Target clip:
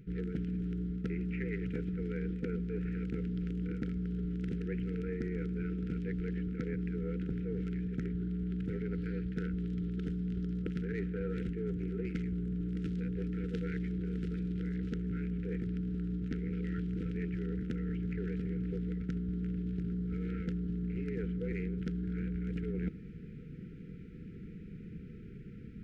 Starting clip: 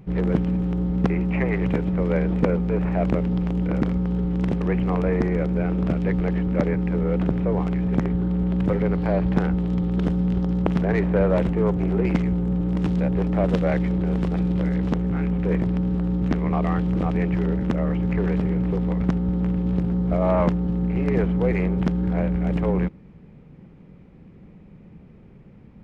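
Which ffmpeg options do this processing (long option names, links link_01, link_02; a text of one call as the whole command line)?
ffmpeg -i in.wav -af "afftfilt=real='re*(1-between(b*sr/4096,500,1300))':imag='im*(1-between(b*sr/4096,500,1300))':win_size=4096:overlap=0.75,areverse,acompressor=threshold=-33dB:ratio=10,areverse" out.wav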